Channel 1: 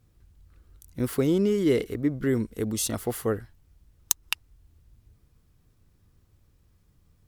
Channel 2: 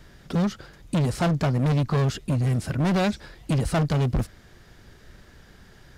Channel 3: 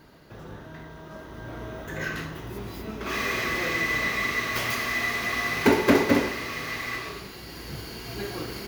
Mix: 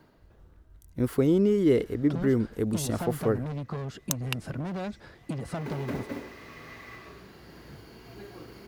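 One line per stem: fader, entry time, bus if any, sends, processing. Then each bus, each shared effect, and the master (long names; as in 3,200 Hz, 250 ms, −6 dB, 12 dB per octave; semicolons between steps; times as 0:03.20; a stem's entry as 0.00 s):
+1.0 dB, 0.00 s, no send, downward expander −52 dBFS
−1.0 dB, 1.80 s, no send, Bessel high-pass filter 150 Hz, order 2; downward compressor 6 to 1, threshold −29 dBFS, peak gain reduction 9.5 dB
−12.0 dB, 0.00 s, no send, noise that follows the level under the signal 22 dB; multiband upward and downward compressor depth 40%; automatic ducking −24 dB, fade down 0.80 s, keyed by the first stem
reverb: not used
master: high-shelf EQ 2,100 Hz −8.5 dB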